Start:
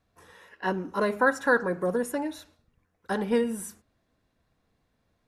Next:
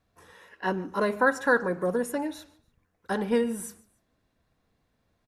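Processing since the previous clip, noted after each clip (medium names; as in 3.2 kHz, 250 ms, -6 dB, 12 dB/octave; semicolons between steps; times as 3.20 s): feedback delay 145 ms, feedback 34%, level -23 dB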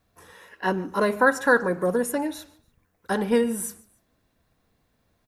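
treble shelf 11 kHz +10 dB; trim +3.5 dB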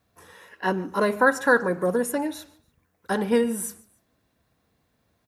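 high-pass 57 Hz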